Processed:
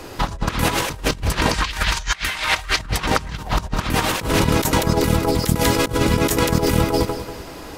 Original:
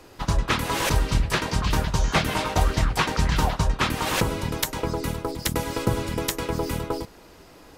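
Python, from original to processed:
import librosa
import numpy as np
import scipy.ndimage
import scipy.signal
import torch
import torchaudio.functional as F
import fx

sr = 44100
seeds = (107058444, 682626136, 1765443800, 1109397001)

y = fx.graphic_eq_10(x, sr, hz=(125, 250, 500, 2000, 4000, 8000), db=(-12, -9, -8, 9, 5, 4), at=(1.54, 2.79))
y = fx.echo_feedback(y, sr, ms=191, feedback_pct=35, wet_db=-11.5)
y = fx.over_compress(y, sr, threshold_db=-28.0, ratio=-0.5)
y = F.gain(torch.from_numpy(y), 8.5).numpy()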